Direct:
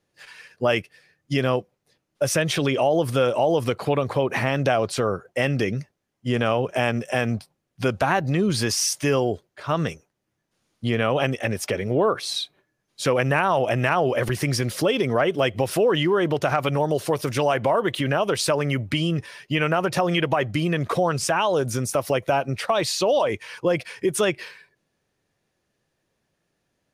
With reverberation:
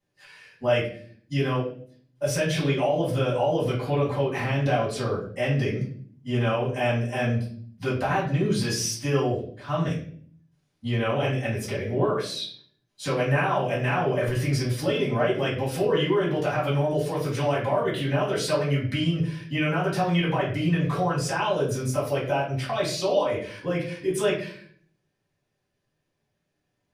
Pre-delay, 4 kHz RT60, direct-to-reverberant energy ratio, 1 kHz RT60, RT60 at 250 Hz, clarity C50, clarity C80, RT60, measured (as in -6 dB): 4 ms, 0.45 s, -8.0 dB, 0.45 s, 0.85 s, 6.5 dB, 9.5 dB, 0.55 s